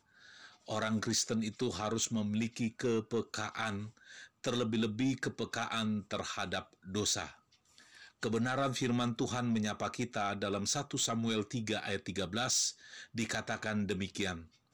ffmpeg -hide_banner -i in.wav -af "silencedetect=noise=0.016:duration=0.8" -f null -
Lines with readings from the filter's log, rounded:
silence_start: 7.26
silence_end: 8.23 | silence_duration: 0.97